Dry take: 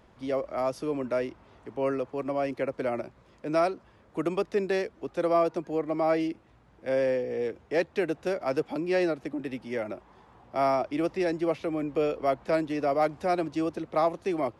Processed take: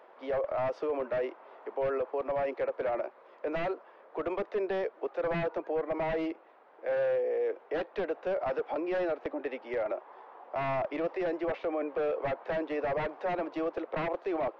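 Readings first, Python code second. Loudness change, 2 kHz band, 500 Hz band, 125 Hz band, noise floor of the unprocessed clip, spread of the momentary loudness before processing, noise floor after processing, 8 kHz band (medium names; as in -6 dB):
-4.0 dB, -2.5 dB, -3.0 dB, -5.5 dB, -59 dBFS, 9 LU, -57 dBFS, no reading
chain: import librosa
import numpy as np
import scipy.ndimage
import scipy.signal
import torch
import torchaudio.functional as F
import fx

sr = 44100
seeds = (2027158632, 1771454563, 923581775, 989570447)

p1 = scipy.signal.sosfilt(scipy.signal.butter(4, 470.0, 'highpass', fs=sr, output='sos'), x)
p2 = fx.over_compress(p1, sr, threshold_db=-39.0, ratio=-1.0)
p3 = p1 + F.gain(torch.from_numpy(p2), -3.0).numpy()
p4 = 10.0 ** (-24.5 / 20.0) * (np.abs((p3 / 10.0 ** (-24.5 / 20.0) + 3.0) % 4.0 - 2.0) - 1.0)
p5 = fx.spacing_loss(p4, sr, db_at_10k=45)
y = F.gain(torch.from_numpy(p5), 2.5).numpy()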